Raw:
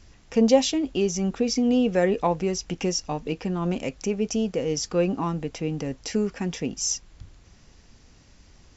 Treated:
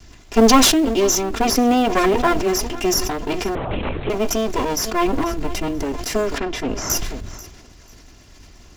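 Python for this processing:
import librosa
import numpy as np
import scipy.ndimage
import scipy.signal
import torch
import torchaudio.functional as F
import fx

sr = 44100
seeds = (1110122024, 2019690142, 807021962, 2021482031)

p1 = fx.lower_of_two(x, sr, delay_ms=2.9)
p2 = fx.low_shelf(p1, sr, hz=130.0, db=9.0, at=(5.06, 5.83))
p3 = fx.quant_float(p2, sr, bits=2)
p4 = p2 + (p3 * librosa.db_to_amplitude(-7.5))
p5 = fx.air_absorb(p4, sr, metres=140.0, at=(6.38, 6.9))
p6 = fx.echo_feedback(p5, sr, ms=490, feedback_pct=29, wet_db=-20.5)
p7 = fx.lpc_vocoder(p6, sr, seeds[0], excitation='whisper', order=10, at=(3.55, 4.1))
p8 = fx.sustainer(p7, sr, db_per_s=40.0)
y = p8 * librosa.db_to_amplitude(5.0)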